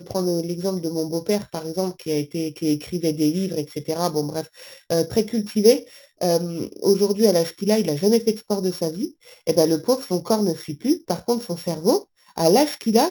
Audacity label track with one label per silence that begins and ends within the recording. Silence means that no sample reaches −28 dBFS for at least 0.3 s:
4.420000	4.900000	silence
5.790000	6.210000	silence
9.070000	9.470000	silence
11.990000	12.380000	silence